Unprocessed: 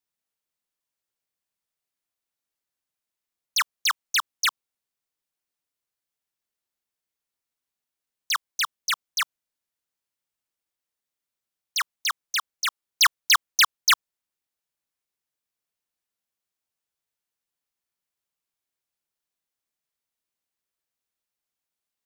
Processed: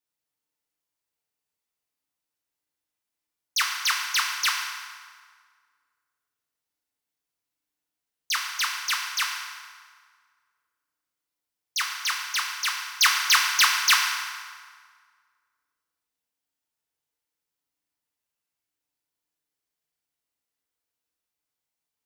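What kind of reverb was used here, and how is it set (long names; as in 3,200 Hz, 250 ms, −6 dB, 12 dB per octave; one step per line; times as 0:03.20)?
feedback delay network reverb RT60 1.8 s, low-frequency decay 1×, high-frequency decay 0.75×, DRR −1 dB
level −2.5 dB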